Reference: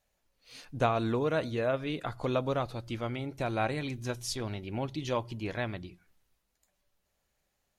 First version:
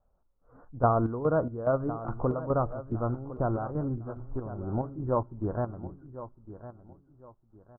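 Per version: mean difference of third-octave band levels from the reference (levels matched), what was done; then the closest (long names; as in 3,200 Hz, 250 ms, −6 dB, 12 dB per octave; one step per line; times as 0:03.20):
10.5 dB: Butterworth low-pass 1,400 Hz 72 dB per octave
low-shelf EQ 70 Hz +9.5 dB
square-wave tremolo 2.4 Hz, depth 65%, duty 55%
repeating echo 1,057 ms, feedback 29%, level −14 dB
level +4 dB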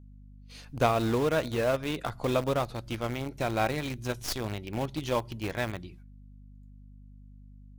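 5.0 dB: stylus tracing distortion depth 0.048 ms
noise gate −56 dBFS, range −18 dB
mains hum 50 Hz, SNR 16 dB
in parallel at −9 dB: bit reduction 5 bits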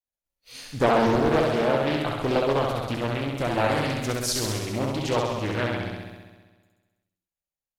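8.0 dB: downward expander −60 dBFS
high-shelf EQ 8,300 Hz +11 dB
flutter between parallel walls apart 11.3 metres, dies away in 1.4 s
highs frequency-modulated by the lows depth 0.72 ms
level +5 dB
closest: second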